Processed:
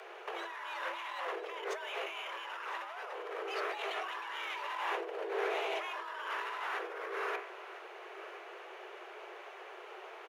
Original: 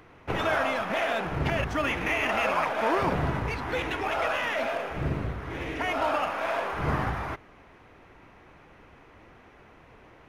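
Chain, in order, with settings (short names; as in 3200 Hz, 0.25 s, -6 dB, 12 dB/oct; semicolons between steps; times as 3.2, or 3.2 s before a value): de-hum 65.92 Hz, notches 33; negative-ratio compressor -37 dBFS, ratio -1; frequency shift +340 Hz; echo 1.004 s -16 dB; gain -3 dB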